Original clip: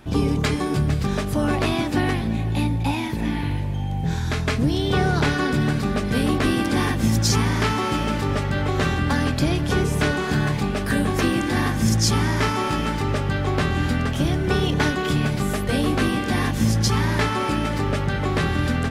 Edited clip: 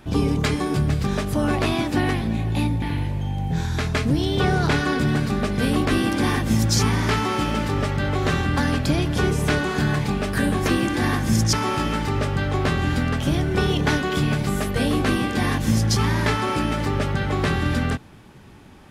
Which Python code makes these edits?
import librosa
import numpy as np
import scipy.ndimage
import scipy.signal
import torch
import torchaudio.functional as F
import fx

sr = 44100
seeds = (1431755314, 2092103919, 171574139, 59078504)

y = fx.edit(x, sr, fx.cut(start_s=2.82, length_s=0.53),
    fx.cut(start_s=12.06, length_s=0.4), tone=tone)